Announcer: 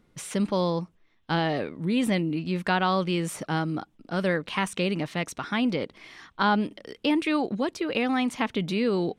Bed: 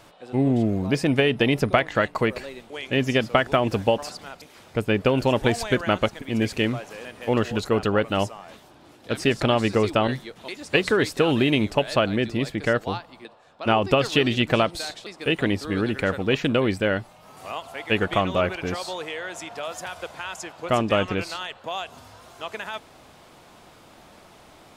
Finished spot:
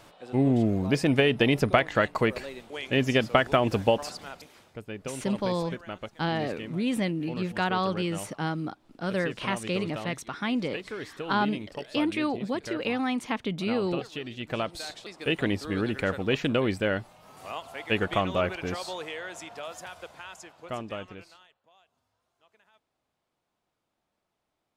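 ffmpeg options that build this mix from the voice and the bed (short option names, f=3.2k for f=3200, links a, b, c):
-filter_complex "[0:a]adelay=4900,volume=-3dB[a];[1:a]volume=10.5dB,afade=t=out:st=4.37:d=0.42:silence=0.188365,afade=t=in:st=14.37:d=0.63:silence=0.237137,afade=t=out:st=18.97:d=2.6:silence=0.0421697[b];[a][b]amix=inputs=2:normalize=0"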